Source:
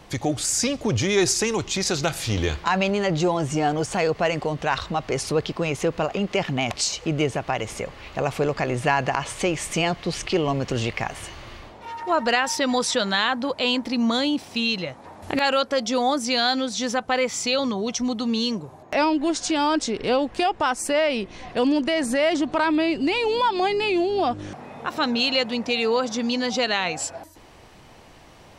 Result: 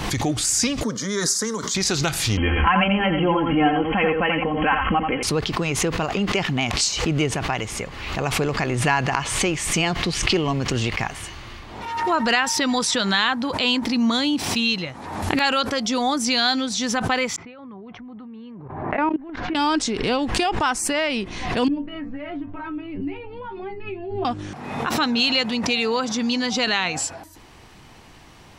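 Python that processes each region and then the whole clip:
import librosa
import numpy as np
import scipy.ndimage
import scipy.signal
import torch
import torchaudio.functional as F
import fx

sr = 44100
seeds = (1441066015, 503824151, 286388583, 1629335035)

y = fx.chain(x, sr, fx.highpass(hz=190.0, slope=12),
    fx.fixed_phaser(hz=520.0, stages=8), at=(0.83, 1.75))
y = fx.chain(y, sr, fx.brickwall_lowpass(high_hz=3300.0),
    fx.comb(ms=3.8, depth=0.79),
    fx.echo_single(ms=86, db=-5.0), at=(2.37, 5.23))
y = fx.chain(y, sr, fx.lowpass(hz=2000.0, slope=24),
    fx.level_steps(step_db=20), at=(17.36, 19.55))
y = fx.chain(y, sr, fx.ladder_lowpass(hz=3100.0, resonance_pct=30),
    fx.tilt_eq(slope=-4.0),
    fx.stiff_resonator(f0_hz=95.0, decay_s=0.25, stiffness=0.002), at=(21.68, 24.25))
y = fx.peak_eq(y, sr, hz=570.0, db=-7.5, octaves=0.76)
y = fx.pre_swell(y, sr, db_per_s=48.0)
y = y * librosa.db_to_amplitude(2.5)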